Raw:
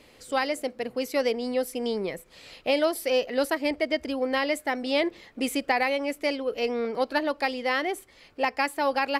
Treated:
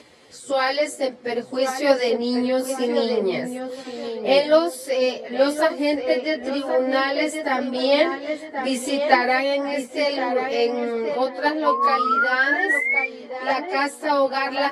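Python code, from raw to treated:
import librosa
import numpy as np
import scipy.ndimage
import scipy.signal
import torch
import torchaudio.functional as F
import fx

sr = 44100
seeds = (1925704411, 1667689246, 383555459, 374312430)

p1 = scipy.signal.sosfilt(scipy.signal.butter(2, 94.0, 'highpass', fs=sr, output='sos'), x)
p2 = p1 + fx.echo_tape(p1, sr, ms=673, feedback_pct=44, wet_db=-5.5, lp_hz=2000.0, drive_db=16.0, wow_cents=13, dry=0)
p3 = fx.spec_paint(p2, sr, seeds[0], shape='rise', start_s=7.29, length_s=0.88, low_hz=1000.0, high_hz=2400.0, level_db=-22.0)
p4 = scipy.signal.sosfilt(scipy.signal.butter(4, 10000.0, 'lowpass', fs=sr, output='sos'), p3)
p5 = fx.low_shelf(p4, sr, hz=250.0, db=-3.5)
p6 = fx.level_steps(p5, sr, step_db=11)
p7 = p5 + F.gain(torch.from_numpy(p6), -1.0).numpy()
p8 = fx.peak_eq(p7, sr, hz=2600.0, db=-5.5, octaves=0.41)
p9 = fx.stretch_vocoder_free(p8, sr, factor=1.6)
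p10 = fx.rider(p9, sr, range_db=5, speed_s=2.0)
y = F.gain(torch.from_numpy(p10), 3.0).numpy()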